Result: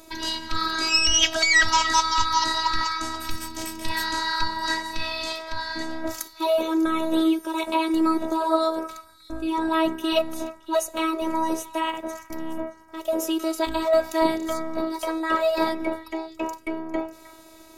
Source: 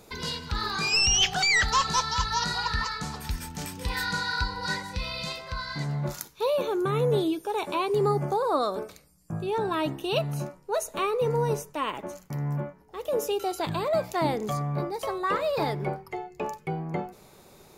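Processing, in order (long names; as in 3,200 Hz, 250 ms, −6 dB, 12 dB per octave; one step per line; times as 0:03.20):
phases set to zero 323 Hz
echo through a band-pass that steps 310 ms, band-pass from 1,600 Hz, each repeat 1.4 octaves, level −12 dB
level +6.5 dB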